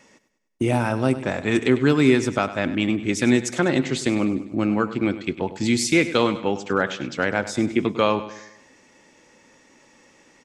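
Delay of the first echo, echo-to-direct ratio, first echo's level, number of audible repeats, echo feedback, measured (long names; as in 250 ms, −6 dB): 100 ms, −13.0 dB, −14.0 dB, 4, 48%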